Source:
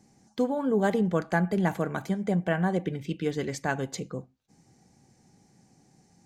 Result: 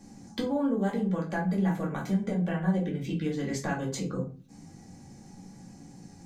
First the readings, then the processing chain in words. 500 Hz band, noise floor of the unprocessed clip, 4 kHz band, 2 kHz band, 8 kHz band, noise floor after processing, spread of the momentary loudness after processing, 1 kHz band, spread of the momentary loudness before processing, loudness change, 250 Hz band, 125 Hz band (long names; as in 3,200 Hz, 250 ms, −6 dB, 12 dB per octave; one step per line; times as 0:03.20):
−5.0 dB, −64 dBFS, −0.5 dB, −5.0 dB, 0.0 dB, −51 dBFS, 21 LU, −4.5 dB, 9 LU, −1.5 dB, 0.0 dB, 0.0 dB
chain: downward compressor 6 to 1, threshold −38 dBFS, peak gain reduction 17 dB
rectangular room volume 200 cubic metres, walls furnished, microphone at 2.3 metres
level +4 dB